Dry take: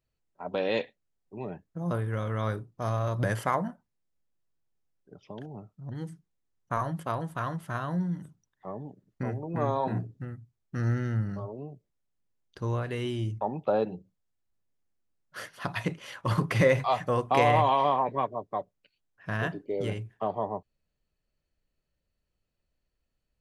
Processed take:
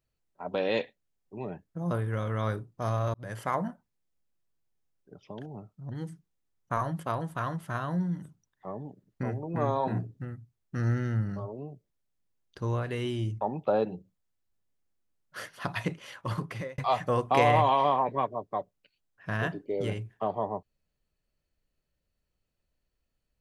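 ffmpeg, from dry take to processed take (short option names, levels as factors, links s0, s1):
-filter_complex "[0:a]asplit=3[s0][s1][s2];[s0]atrim=end=3.14,asetpts=PTS-STARTPTS,afade=t=out:st=3.136:d=0.004:c=hsin[s3];[s1]atrim=start=3.14:end=16.78,asetpts=PTS-STARTPTS,afade=t=in:d=0.51,afade=t=out:st=12.38:d=1.26:c=qsin[s4];[s2]atrim=start=16.78,asetpts=PTS-STARTPTS,afade=t=in:d=0.004:c=hsin[s5];[s3][s4][s5]concat=n=3:v=0:a=1"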